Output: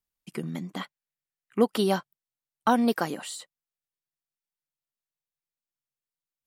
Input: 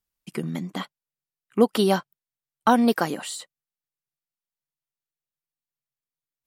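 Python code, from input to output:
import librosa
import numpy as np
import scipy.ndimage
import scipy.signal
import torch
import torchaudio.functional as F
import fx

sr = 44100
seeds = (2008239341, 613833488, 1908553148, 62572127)

y = fx.peak_eq(x, sr, hz=1900.0, db=6.0, octaves=0.77, at=(0.81, 1.67))
y = y * librosa.db_to_amplitude(-4.0)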